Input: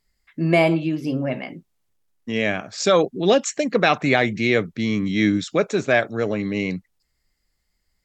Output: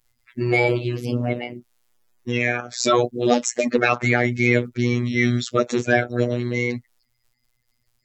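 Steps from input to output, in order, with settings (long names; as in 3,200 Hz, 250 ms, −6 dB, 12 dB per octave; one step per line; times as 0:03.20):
spectral magnitudes quantised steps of 30 dB
in parallel at +3 dB: brickwall limiter −12.5 dBFS, peak gain reduction 9 dB
on the sum: phases set to zero 121 Hz
level −3 dB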